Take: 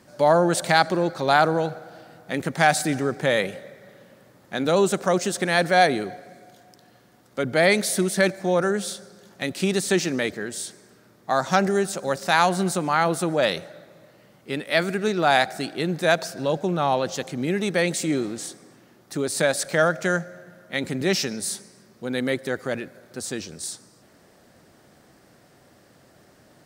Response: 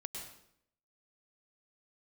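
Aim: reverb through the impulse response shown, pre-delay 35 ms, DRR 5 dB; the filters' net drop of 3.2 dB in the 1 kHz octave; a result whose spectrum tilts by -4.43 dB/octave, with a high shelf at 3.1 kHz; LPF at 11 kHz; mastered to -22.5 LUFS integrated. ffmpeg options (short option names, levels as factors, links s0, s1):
-filter_complex "[0:a]lowpass=11000,equalizer=f=1000:t=o:g=-4,highshelf=f=3100:g=-7.5,asplit=2[s0][s1];[1:a]atrim=start_sample=2205,adelay=35[s2];[s1][s2]afir=irnorm=-1:irlink=0,volume=0.668[s3];[s0][s3]amix=inputs=2:normalize=0,volume=1.19"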